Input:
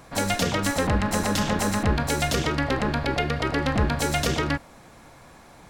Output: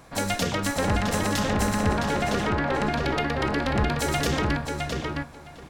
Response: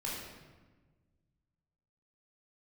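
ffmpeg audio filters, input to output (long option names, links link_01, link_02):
-filter_complex "[0:a]asettb=1/sr,asplit=3[link_01][link_02][link_03];[link_01]atrim=end=1.894[link_04];[link_02]atrim=start=1.89:end=2.8,asetpts=PTS-STARTPTS,afade=type=in:duration=0.004:curve=qsin,afade=type=out:start_time=0.906:duration=0.004:curve=qsin,asplit=2[link_05][link_06];[link_06]highpass=frequency=720:poles=1,volume=12dB,asoftclip=type=tanh:threshold=-10dB[link_07];[link_05][link_07]amix=inputs=2:normalize=0,lowpass=frequency=1200:poles=1,volume=-6dB[link_08];[link_03]atrim=start=2.796[link_09];[link_04][link_08]acrossfade=duration=0.004:curve1=hsin:curve2=qsin[link_10];[link_10][link_09]acrossfade=duration=0.004:curve1=qsin:curve2=hsin,asplit=2[link_11][link_12];[link_12]adelay=662,lowpass=frequency=3900:poles=1,volume=-3dB,asplit=2[link_13][link_14];[link_14]adelay=662,lowpass=frequency=3900:poles=1,volume=0.17,asplit=2[link_15][link_16];[link_16]adelay=662,lowpass=frequency=3900:poles=1,volume=0.17[link_17];[link_11][link_13][link_15][link_17]amix=inputs=4:normalize=0,volume=-2dB"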